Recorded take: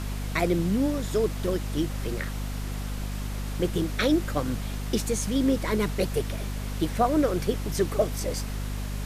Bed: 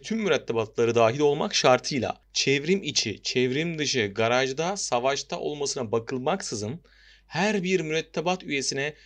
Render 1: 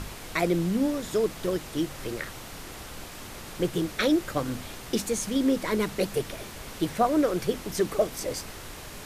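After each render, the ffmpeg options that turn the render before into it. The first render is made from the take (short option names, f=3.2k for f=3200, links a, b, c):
-af "bandreject=f=50:t=h:w=6,bandreject=f=100:t=h:w=6,bandreject=f=150:t=h:w=6,bandreject=f=200:t=h:w=6,bandreject=f=250:t=h:w=6"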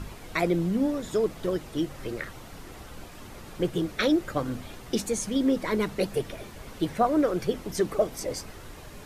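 -af "afftdn=nr=8:nf=-42"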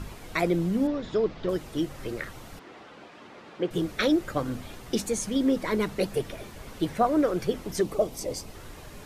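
-filter_complex "[0:a]asettb=1/sr,asplit=3[a][b][c];[a]atrim=end=0.874[d];[b]atrim=start=0.87:end=1.49,asetpts=PTS-STARTPTS,afade=t=in:d=0.004:c=qsin,afade=t=out:st=0.616:d=0.004:c=qsin,lowpass=f=4.9k:w=0.5412,lowpass=f=4.9k:w=1.3066[e];[c]atrim=start=1.486[f];[d][e]acrossfade=d=0.004:c1=hsin:c2=qsin[g];[g][f]acrossfade=d=0.004:c1=qsin:c2=hsin,asettb=1/sr,asplit=3[h][i][j];[h]atrim=end=2.594[k];[i]atrim=start=2.59:end=3.71,asetpts=PTS-STARTPTS,afade=t=in:d=0.004:c=qsin,afade=t=out:st=1.116:d=0.004:c=qsin,highpass=250,lowpass=3.5k[l];[j]atrim=start=3.706[m];[k][l]acrossfade=d=0.004:c1=hsin:c2=qsin[n];[n][m]acrossfade=d=0.004:c1=qsin:c2=hsin,asettb=1/sr,asplit=3[o][p][q];[o]atrim=end=7.814[r];[p]atrim=start=7.81:end=8.55,asetpts=PTS-STARTPTS,afade=t=in:d=0.004:c=qsin,afade=t=out:st=0.736:d=0.004:c=qsin,equalizer=f=1.6k:t=o:w=0.86:g=-8.5[s];[q]atrim=start=8.546[t];[r][s]acrossfade=d=0.004:c1=hsin:c2=qsin[u];[u][t]acrossfade=d=0.004:c1=qsin:c2=hsin"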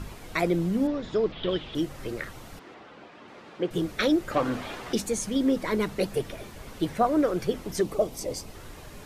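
-filter_complex "[0:a]asettb=1/sr,asplit=3[a][b][c];[a]atrim=end=1.324[d];[b]atrim=start=1.32:end=1.75,asetpts=PTS-STARTPTS,afade=t=in:d=0.004:c=qsin,afade=t=out:st=0.426:d=0.004:c=qsin,lowpass=f=3.3k:t=q:w=6.5[e];[c]atrim=start=1.746[f];[d][e]acrossfade=d=0.004:c1=hsin:c2=qsin[g];[g][f]acrossfade=d=0.004:c1=qsin:c2=hsin,asettb=1/sr,asplit=3[h][i][j];[h]atrim=end=2.744[k];[i]atrim=start=2.74:end=3.28,asetpts=PTS-STARTPTS,afade=t=in:d=0.004:c=qsin,afade=t=out:st=0.536:d=0.004:c=qsin,highshelf=f=7k:g=-10.5[l];[j]atrim=start=3.276[m];[k][l]acrossfade=d=0.004:c1=hsin:c2=qsin[n];[n][m]acrossfade=d=0.004:c1=qsin:c2=hsin,asettb=1/sr,asplit=3[o][p][q];[o]atrim=end=4.314[r];[p]atrim=start=4.31:end=4.93,asetpts=PTS-STARTPTS,afade=t=in:d=0.004:c=qsin,afade=t=out:st=0.616:d=0.004:c=qsin,asplit=2[s][t];[t]highpass=f=720:p=1,volume=18dB,asoftclip=type=tanh:threshold=-13.5dB[u];[s][u]amix=inputs=2:normalize=0,lowpass=f=2k:p=1,volume=-6dB[v];[q]atrim=start=4.926[w];[r][v]acrossfade=d=0.004:c1=hsin:c2=qsin[x];[x][w]acrossfade=d=0.004:c1=qsin:c2=hsin"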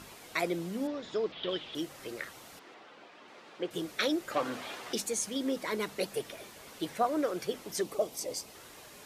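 -af "highpass=f=730:p=1,equalizer=f=1.4k:w=0.57:g=-3.5"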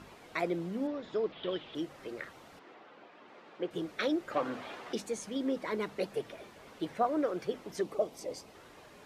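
-af "lowpass=f=1.8k:p=1,bandreject=f=60:t=h:w=6,bandreject=f=120:t=h:w=6"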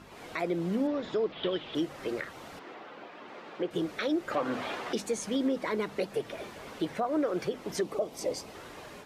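-af "dynaudnorm=f=100:g=3:m=8.5dB,alimiter=limit=-21dB:level=0:latency=1:release=230"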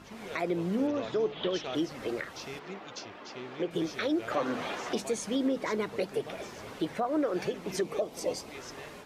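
-filter_complex "[1:a]volume=-20dB[a];[0:a][a]amix=inputs=2:normalize=0"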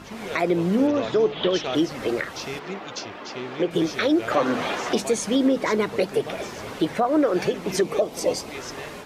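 -af "volume=9dB"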